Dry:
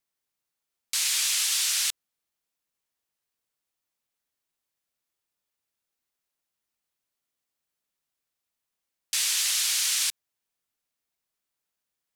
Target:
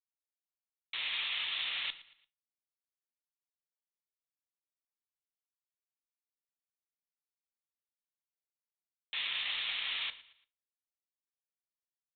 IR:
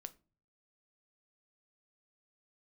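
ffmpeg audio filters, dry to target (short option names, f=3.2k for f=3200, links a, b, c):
-filter_complex "[0:a]equalizer=f=1.5k:t=o:w=0.22:g=-8,aresample=8000,aeval=exprs='sgn(val(0))*max(abs(val(0))-0.00224,0)':c=same,aresample=44100,aecho=1:1:114|228|342:0.119|0.0452|0.0172[a];[1:a]atrim=start_sample=2205[b];[a][b]afir=irnorm=-1:irlink=0,volume=3.5dB"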